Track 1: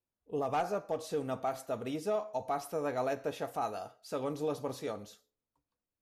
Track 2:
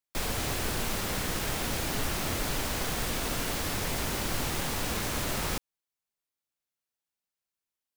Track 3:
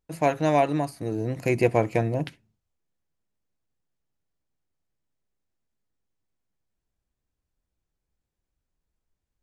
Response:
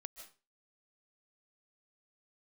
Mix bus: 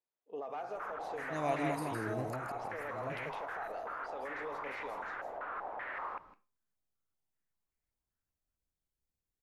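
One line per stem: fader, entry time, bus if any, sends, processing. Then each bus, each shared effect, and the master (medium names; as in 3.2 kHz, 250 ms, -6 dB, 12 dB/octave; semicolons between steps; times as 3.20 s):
+1.0 dB, 0.00 s, bus A, no send, echo send -23.5 dB, peaking EQ 1.2 kHz -3 dB 2.4 oct
-8.5 dB, 0.60 s, bus A, send -12 dB, echo send -20.5 dB, bass shelf 160 Hz -10 dB; step-sequenced low-pass 5.2 Hz 670–2200 Hz
-11.0 dB, 0.90 s, no bus, no send, echo send -4 dB, slow attack 520 ms
bus A: 0.0 dB, band-pass 530–2200 Hz; peak limiter -33.5 dBFS, peak gain reduction 10.5 dB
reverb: on, RT60 0.35 s, pre-delay 110 ms
echo: delay 160 ms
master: treble shelf 7.9 kHz +8.5 dB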